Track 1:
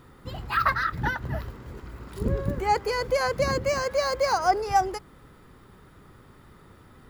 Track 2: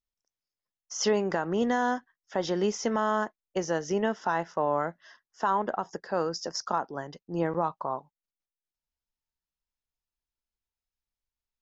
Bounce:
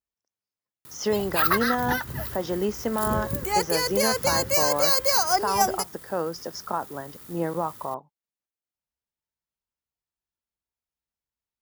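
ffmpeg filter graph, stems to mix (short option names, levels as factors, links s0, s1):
-filter_complex "[0:a]aemphasis=mode=production:type=75fm,acrusher=bits=9:dc=4:mix=0:aa=0.000001,adelay=850,volume=0.841[s0];[1:a]highshelf=f=2600:g=-10,volume=1.12[s1];[s0][s1]amix=inputs=2:normalize=0,highpass=63,highshelf=f=4900:g=6"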